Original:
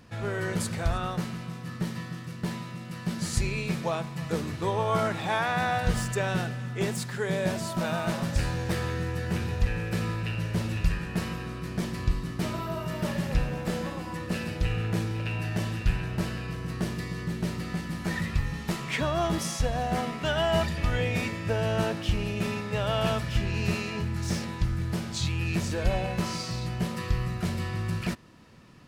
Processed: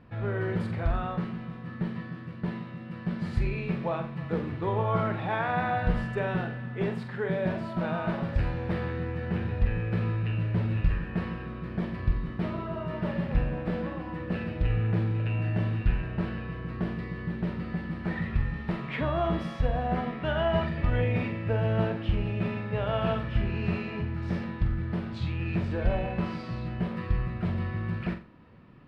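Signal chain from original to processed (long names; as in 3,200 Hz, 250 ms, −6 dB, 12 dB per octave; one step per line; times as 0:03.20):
high-frequency loss of the air 440 metres
flutter between parallel walls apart 7.7 metres, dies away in 0.33 s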